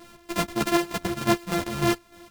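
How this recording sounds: a buzz of ramps at a fixed pitch in blocks of 128 samples; chopped level 3.3 Hz, depth 60%, duty 50%; a shimmering, thickened sound

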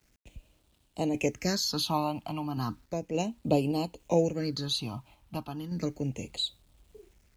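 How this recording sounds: phasing stages 6, 0.34 Hz, lowest notch 450–1700 Hz; a quantiser's noise floor 12-bit, dither none; random-step tremolo

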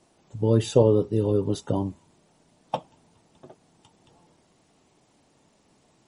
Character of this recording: a quantiser's noise floor 12-bit, dither none; MP3

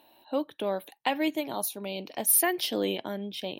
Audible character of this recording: noise floor -60 dBFS; spectral tilt -2.0 dB/oct

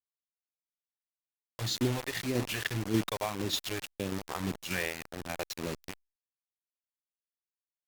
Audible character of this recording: phasing stages 2, 1.8 Hz, lowest notch 220–1200 Hz; a quantiser's noise floor 6-bit, dither none; tremolo saw down 1.7 Hz, depth 45%; Opus

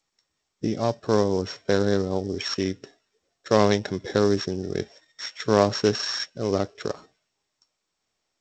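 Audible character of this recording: a buzz of ramps at a fixed pitch in blocks of 8 samples; G.722

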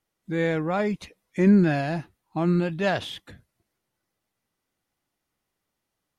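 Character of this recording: noise floor -82 dBFS; spectral tilt -6.5 dB/oct

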